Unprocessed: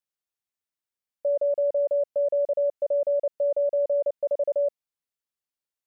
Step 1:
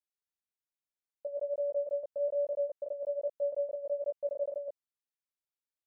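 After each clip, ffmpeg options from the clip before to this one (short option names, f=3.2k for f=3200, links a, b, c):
-af "flanger=delay=17:depth=3.3:speed=1.2,volume=-6dB"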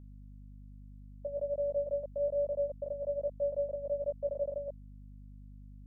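-af "aeval=exprs='val(0)+0.00355*(sin(2*PI*50*n/s)+sin(2*PI*2*50*n/s)/2+sin(2*PI*3*50*n/s)/3+sin(2*PI*4*50*n/s)/4+sin(2*PI*5*50*n/s)/5)':c=same"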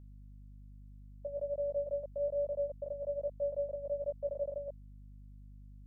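-af "equalizer=f=250:w=1.1:g=-4,volume=-1.5dB"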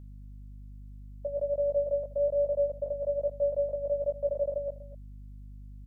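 -af "aecho=1:1:243:0.141,volume=6.5dB"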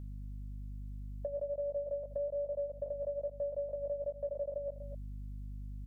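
-af "acompressor=threshold=-39dB:ratio=4,volume=2.5dB"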